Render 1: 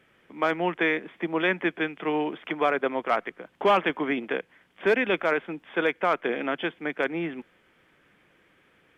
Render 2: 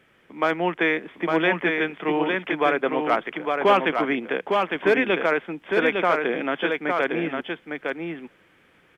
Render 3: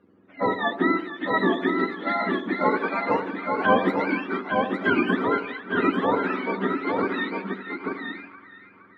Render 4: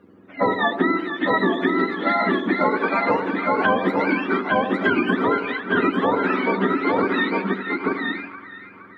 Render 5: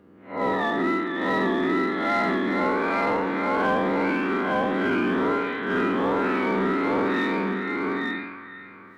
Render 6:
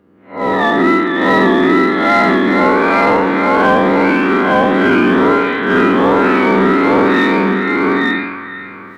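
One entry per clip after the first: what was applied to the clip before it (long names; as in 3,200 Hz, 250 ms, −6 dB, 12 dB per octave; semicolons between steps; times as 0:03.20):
single-tap delay 857 ms −4 dB; level +2.5 dB
frequency axis turned over on the octave scale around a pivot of 790 Hz; echo with a time of its own for lows and highs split 1,100 Hz, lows 82 ms, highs 466 ms, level −10.5 dB; low-pass that shuts in the quiet parts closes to 1,800 Hz, open at −19 dBFS
downward compressor 6 to 1, threshold −24 dBFS, peak gain reduction 10 dB; level +8 dB
spectrum smeared in time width 154 ms; in parallel at −3 dB: hard clipping −22.5 dBFS, distortion −11 dB; on the sum: level −4 dB
automatic gain control gain up to 13 dB; level +1 dB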